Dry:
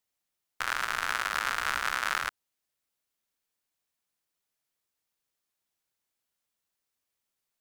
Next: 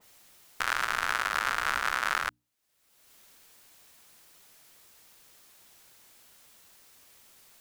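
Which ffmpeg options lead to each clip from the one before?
ffmpeg -i in.wav -af "bandreject=frequency=60:width_type=h:width=6,bandreject=frequency=120:width_type=h:width=6,bandreject=frequency=180:width_type=h:width=6,bandreject=frequency=240:width_type=h:width=6,bandreject=frequency=300:width_type=h:width=6,acompressor=mode=upward:threshold=-39dB:ratio=2.5,adynamicequalizer=threshold=0.01:dfrequency=2000:dqfactor=0.7:tfrequency=2000:tqfactor=0.7:attack=5:release=100:ratio=0.375:range=1.5:mode=cutabove:tftype=highshelf,volume=2dB" out.wav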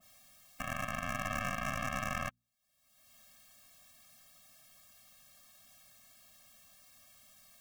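ffmpeg -i in.wav -af "alimiter=limit=-19dB:level=0:latency=1:release=211,aeval=exprs='0.112*(cos(1*acos(clip(val(0)/0.112,-1,1)))-cos(1*PI/2))+0.0355*(cos(4*acos(clip(val(0)/0.112,-1,1)))-cos(4*PI/2))':channel_layout=same,afftfilt=real='re*eq(mod(floor(b*sr/1024/260),2),0)':imag='im*eq(mod(floor(b*sr/1024/260),2),0)':win_size=1024:overlap=0.75" out.wav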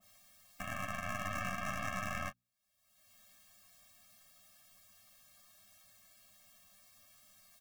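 ffmpeg -i in.wav -af "aecho=1:1:10|21|35:0.531|0.335|0.133,volume=-4dB" out.wav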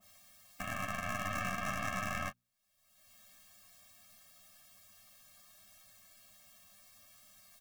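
ffmpeg -i in.wav -af "aeval=exprs='if(lt(val(0),0),0.708*val(0),val(0))':channel_layout=same,volume=4dB" out.wav

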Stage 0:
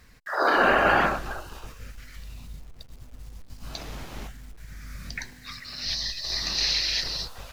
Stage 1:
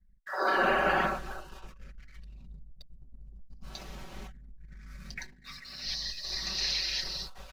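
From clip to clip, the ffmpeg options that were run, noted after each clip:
ffmpeg -i in.wav -af "anlmdn=0.0251,aecho=1:1:5.3:0.76,volume=-8dB" out.wav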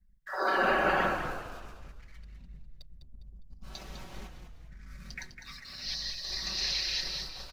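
ffmpeg -i in.wav -filter_complex "[0:a]asplit=5[link_01][link_02][link_03][link_04][link_05];[link_02]adelay=203,afreqshift=-42,volume=-8dB[link_06];[link_03]adelay=406,afreqshift=-84,volume=-16.6dB[link_07];[link_04]adelay=609,afreqshift=-126,volume=-25.3dB[link_08];[link_05]adelay=812,afreqshift=-168,volume=-33.9dB[link_09];[link_01][link_06][link_07][link_08][link_09]amix=inputs=5:normalize=0,volume=-1dB" out.wav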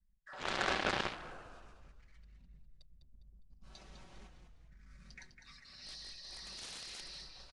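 ffmpeg -i in.wav -af "aeval=exprs='0.237*(cos(1*acos(clip(val(0)/0.237,-1,1)))-cos(1*PI/2))+0.0531*(cos(7*acos(clip(val(0)/0.237,-1,1)))-cos(7*PI/2))':channel_layout=same,aresample=22050,aresample=44100,volume=-5.5dB" out.wav

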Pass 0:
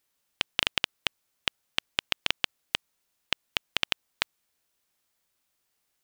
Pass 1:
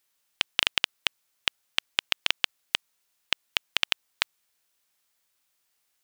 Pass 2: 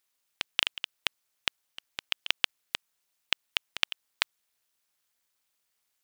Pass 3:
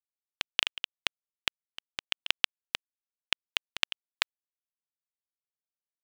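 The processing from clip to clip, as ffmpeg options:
ffmpeg -i in.wav -af "tiltshelf=frequency=650:gain=-4,volume=-1dB" out.wav
ffmpeg -i in.wav -af "tremolo=f=220:d=0.919" out.wav
ffmpeg -i in.wav -af "acrusher=bits=9:mix=0:aa=0.000001" out.wav

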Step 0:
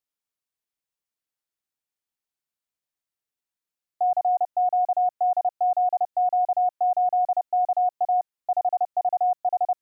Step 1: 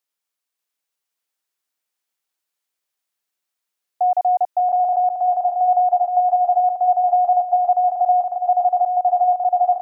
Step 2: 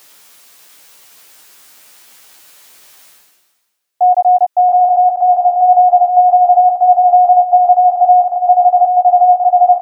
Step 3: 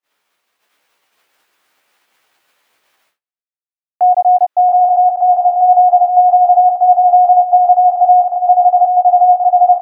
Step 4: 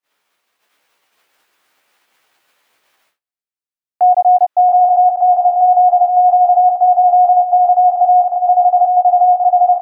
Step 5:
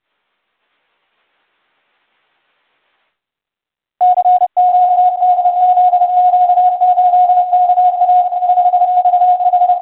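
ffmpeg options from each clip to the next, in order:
ffmpeg -i in.wav -filter_complex "[0:a]highpass=frequency=490:poles=1,asplit=2[link_01][link_02];[link_02]aecho=0:1:590|1092|1518|1880|2188:0.631|0.398|0.251|0.158|0.1[link_03];[link_01][link_03]amix=inputs=2:normalize=0,volume=6.5dB" out.wav
ffmpeg -i in.wav -filter_complex "[0:a]areverse,acompressor=mode=upward:threshold=-24dB:ratio=2.5,areverse,asplit=2[link_01][link_02];[link_02]adelay=14,volume=-4.5dB[link_03];[link_01][link_03]amix=inputs=2:normalize=0,volume=5dB" out.wav
ffmpeg -i in.wav -af "agate=range=-41dB:threshold=-41dB:ratio=16:detection=peak,bass=frequency=250:gain=-7,treble=frequency=4000:gain=-14" out.wav
ffmpeg -i in.wav -af "alimiter=limit=-4.5dB:level=0:latency=1:release=56" out.wav
ffmpeg -i in.wav -ar 8000 -c:a pcm_mulaw out.wav

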